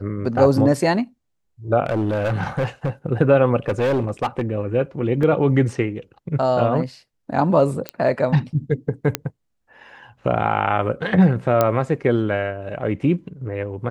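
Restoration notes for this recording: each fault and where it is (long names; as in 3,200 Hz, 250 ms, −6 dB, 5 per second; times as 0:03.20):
0:01.84–0:02.90: clipping −16.5 dBFS
0:03.68–0:04.42: clipping −16 dBFS
0:05.23: drop-out 2.7 ms
0:07.89: click −10 dBFS
0:09.15: click −3 dBFS
0:11.61: click −4 dBFS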